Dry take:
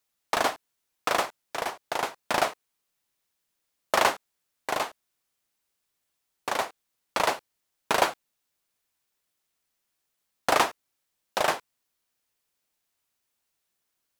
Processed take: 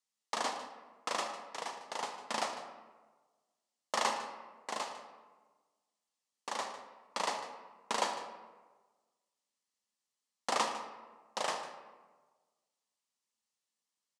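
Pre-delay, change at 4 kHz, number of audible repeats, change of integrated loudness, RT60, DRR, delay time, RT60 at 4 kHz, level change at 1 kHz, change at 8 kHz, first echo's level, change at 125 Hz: 29 ms, -7.0 dB, 1, -10.0 dB, 1.3 s, 5.0 dB, 152 ms, 0.70 s, -8.5 dB, -6.5 dB, -14.5 dB, under -10 dB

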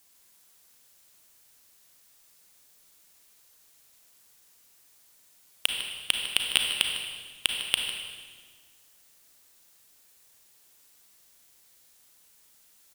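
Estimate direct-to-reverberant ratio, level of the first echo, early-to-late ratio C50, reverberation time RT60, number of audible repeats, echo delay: 1.5 dB, -12.0 dB, 2.5 dB, 1.6 s, 1, 152 ms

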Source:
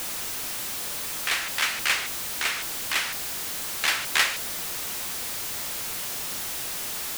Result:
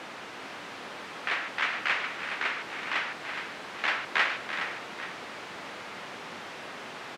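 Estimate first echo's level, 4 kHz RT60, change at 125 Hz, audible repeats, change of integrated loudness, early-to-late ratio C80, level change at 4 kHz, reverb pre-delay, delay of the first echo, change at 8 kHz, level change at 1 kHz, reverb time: -10.5 dB, no reverb, -6.0 dB, 3, -6.0 dB, no reverb, -8.5 dB, no reverb, 335 ms, -22.0 dB, +0.5 dB, no reverb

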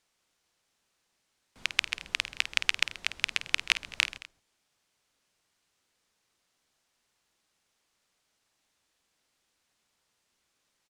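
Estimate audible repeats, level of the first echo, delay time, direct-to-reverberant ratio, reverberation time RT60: 3, -12.5 dB, 51 ms, no reverb, no reverb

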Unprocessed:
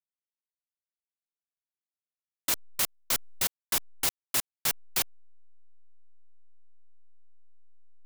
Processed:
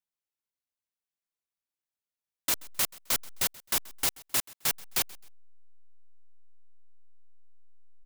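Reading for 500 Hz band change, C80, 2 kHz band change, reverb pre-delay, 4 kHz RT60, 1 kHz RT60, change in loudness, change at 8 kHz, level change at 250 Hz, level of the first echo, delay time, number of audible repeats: 0.0 dB, no reverb, 0.0 dB, no reverb, no reverb, no reverb, 0.0 dB, 0.0 dB, 0.0 dB, -22.5 dB, 131 ms, 2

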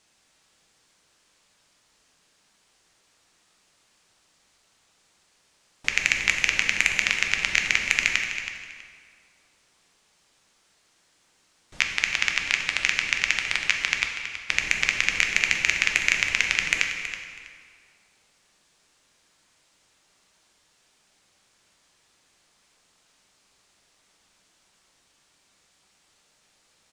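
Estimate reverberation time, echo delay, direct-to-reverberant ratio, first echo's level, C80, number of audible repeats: 1.9 s, 324 ms, 2.0 dB, -11.5 dB, 5.0 dB, 2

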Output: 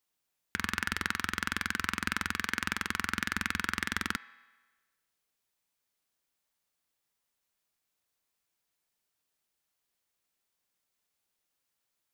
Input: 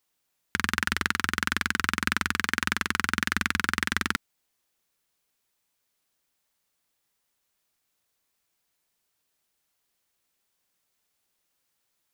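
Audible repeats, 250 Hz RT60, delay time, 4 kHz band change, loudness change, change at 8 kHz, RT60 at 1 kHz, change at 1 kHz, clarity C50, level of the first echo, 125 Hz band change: no echo, 1.3 s, no echo, -6.0 dB, -6.0 dB, -6.0 dB, 1.3 s, -5.5 dB, 14.0 dB, no echo, -6.0 dB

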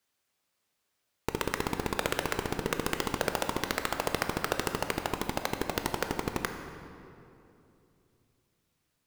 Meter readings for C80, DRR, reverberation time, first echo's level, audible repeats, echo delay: 7.5 dB, 5.5 dB, 2.8 s, no echo, no echo, no echo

